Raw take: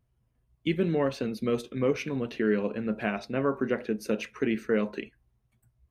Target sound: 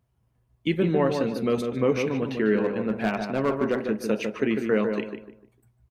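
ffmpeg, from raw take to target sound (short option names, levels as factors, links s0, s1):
-filter_complex "[0:a]highpass=57,equalizer=f=870:t=o:w=0.9:g=4,asettb=1/sr,asplit=3[s0][s1][s2];[s0]atrim=end=2.564[s3];[s1]atrim=start=2.56:end=3.81,asetpts=PTS-STARTPTS,afade=t=in:d=0.004:c=qsin,afade=t=out:st=1.246:d=0.004:c=qsin,volume=10,asoftclip=hard,volume=0.1[s4];[s2]atrim=start=3.806[s5];[s3][s4]acrossfade=d=0.004:c1=hsin:c2=qsin[s6];[s6][s5]acrossfade=d=0.004:c1=qsin:c2=hsin,asplit=2[s7][s8];[s8]adelay=150,lowpass=f=1600:p=1,volume=0.562,asplit=2[s9][s10];[s10]adelay=150,lowpass=f=1600:p=1,volume=0.33,asplit=2[s11][s12];[s12]adelay=150,lowpass=f=1600:p=1,volume=0.33,asplit=2[s13][s14];[s14]adelay=150,lowpass=f=1600:p=1,volume=0.33[s15];[s9][s11][s13][s15]amix=inputs=4:normalize=0[s16];[s7][s16]amix=inputs=2:normalize=0,volume=1.33"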